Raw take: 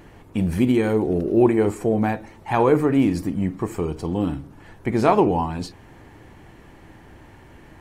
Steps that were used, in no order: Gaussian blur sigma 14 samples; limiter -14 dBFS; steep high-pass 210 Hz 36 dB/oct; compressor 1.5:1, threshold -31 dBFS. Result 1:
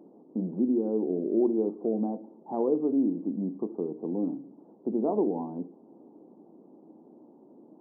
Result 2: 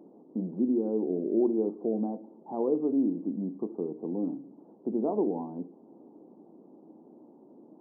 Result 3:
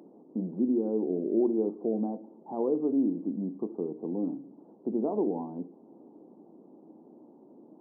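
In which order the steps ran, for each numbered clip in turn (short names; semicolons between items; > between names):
steep high-pass > Gaussian blur > compressor > limiter; compressor > steep high-pass > Gaussian blur > limiter; compressor > limiter > Gaussian blur > steep high-pass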